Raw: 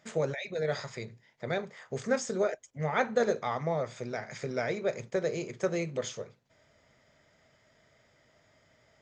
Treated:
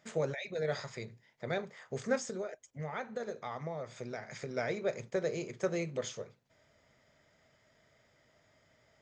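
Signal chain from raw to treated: 2.16–4.57 s: compression 4:1, threshold -34 dBFS, peak gain reduction 11 dB; trim -3 dB

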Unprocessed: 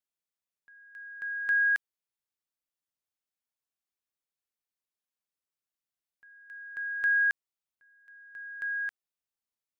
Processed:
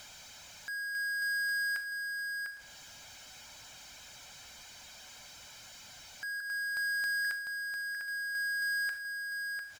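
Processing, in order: reverb removal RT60 0.51 s; 6.40–7.25 s: resonant high shelf 1.7 kHz -10 dB, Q 3; comb 1.3 ms, depth 83%; compression 16:1, threshold -30 dBFS, peak gain reduction 11.5 dB; saturation -34 dBFS, distortion -13 dB; resampled via 16 kHz; echo from a far wall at 120 m, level -12 dB; on a send at -12 dB: reverberation RT60 0.40 s, pre-delay 3 ms; on the sum: power-law waveshaper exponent 0.35; tape noise reduction on one side only encoder only

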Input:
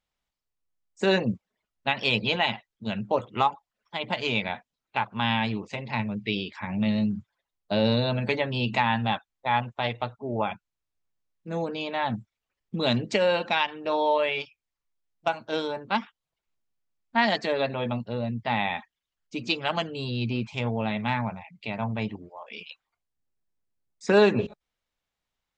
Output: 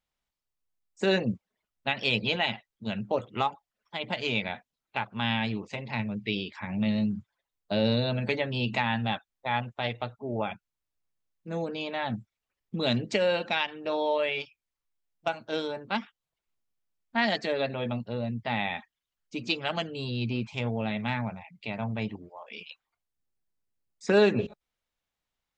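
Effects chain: dynamic bell 990 Hz, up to -6 dB, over -42 dBFS, Q 2.7; trim -2 dB

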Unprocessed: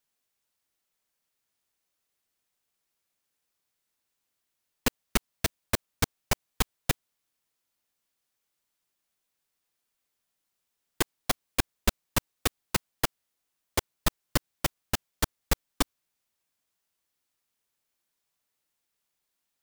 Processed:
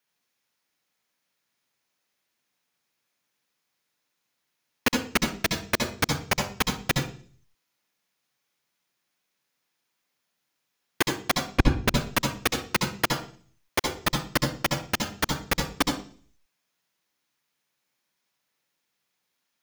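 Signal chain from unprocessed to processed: 11.44–11.88 s: RIAA curve playback; reverberation RT60 0.45 s, pre-delay 65 ms, DRR 4 dB

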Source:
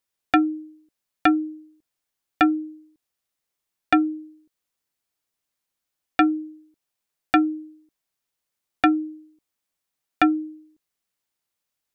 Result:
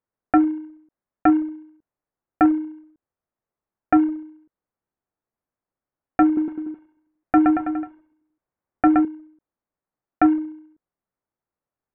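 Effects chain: block-companded coder 3-bit; Gaussian low-pass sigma 5.9 samples; 6.25–9.05 s: bouncing-ball echo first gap 120 ms, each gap 0.9×, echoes 5; trim +3.5 dB

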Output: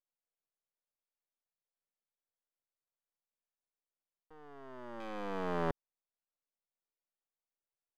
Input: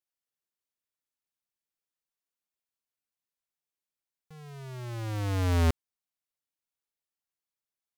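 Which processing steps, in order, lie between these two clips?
rattle on loud lows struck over -33 dBFS, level -27 dBFS; ladder band-pass 640 Hz, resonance 30%; half-wave rectifier; trim +14 dB

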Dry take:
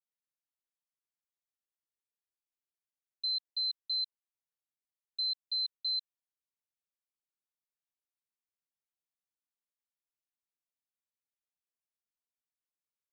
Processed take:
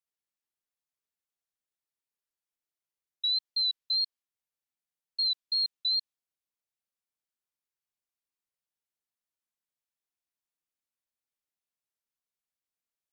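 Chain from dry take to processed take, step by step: dynamic bell 3.9 kHz, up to +5 dB, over -47 dBFS, Q 0.85; wow and flutter 77 cents

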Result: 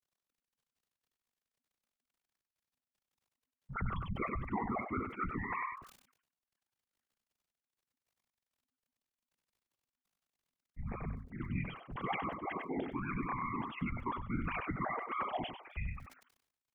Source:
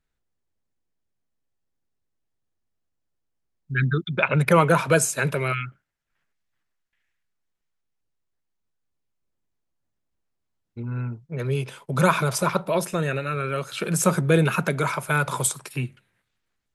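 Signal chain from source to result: formants replaced by sine waves; gate with hold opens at -45 dBFS; reverse; compression 6:1, threshold -30 dBFS, peak gain reduction 18 dB; reverse; crackle 33 per s -59 dBFS; whisper effect; frequency shift -260 Hz; on a send: delay 97 ms -10.5 dB; on the sum: decay stretcher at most 85 dB/s; trim -6 dB

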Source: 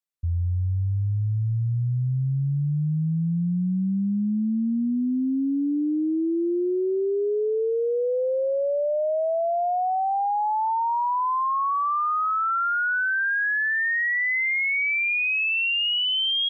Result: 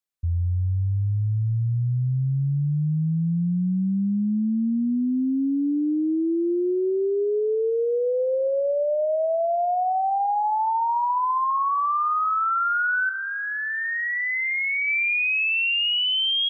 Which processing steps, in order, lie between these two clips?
13.09–14.88 s: peaking EQ 1.5 kHz -7.5 dB 0.66 oct; feedback echo behind a band-pass 68 ms, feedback 84%, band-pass 1.2 kHz, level -21 dB; trim +1 dB

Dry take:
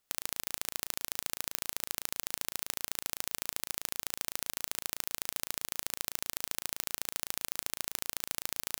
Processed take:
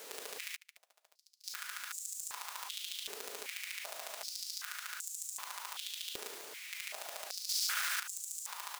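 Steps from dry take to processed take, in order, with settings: 6.26–6.68 s: compressor with a negative ratio -47 dBFS; delay 112 ms -7 dB; hum 50 Hz, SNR 23 dB; comb 4.9 ms, depth 95%; level held to a coarse grid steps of 18 dB; word length cut 8-bit, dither triangular; treble shelf 8.5 kHz -7 dB; 0.56–1.44 s: gate -42 dBFS, range -36 dB; transient shaper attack -8 dB, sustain +2 dB; 7.49–8.00 s: waveshaping leveller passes 3; step-sequenced high-pass 2.6 Hz 430–7300 Hz; trim +1 dB

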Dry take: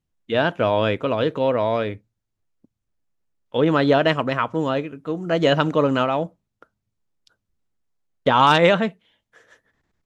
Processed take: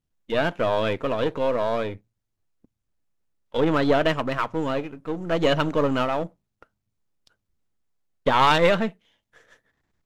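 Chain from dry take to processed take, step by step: partial rectifier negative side -7 dB

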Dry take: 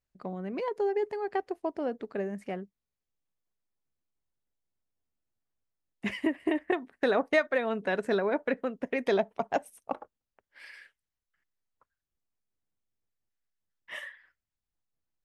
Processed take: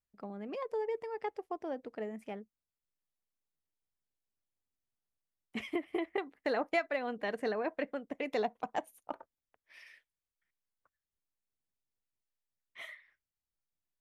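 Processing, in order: speed mistake 44.1 kHz file played as 48 kHz; trim -6.5 dB

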